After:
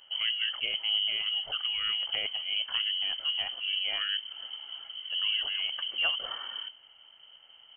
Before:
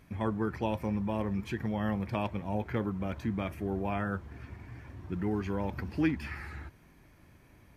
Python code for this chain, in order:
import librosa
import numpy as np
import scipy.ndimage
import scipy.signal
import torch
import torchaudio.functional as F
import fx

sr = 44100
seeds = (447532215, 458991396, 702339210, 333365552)

y = fx.octave_divider(x, sr, octaves=1, level_db=-1.0)
y = fx.peak_eq(y, sr, hz=560.0, db=-11.0, octaves=0.76)
y = fx.freq_invert(y, sr, carrier_hz=3100)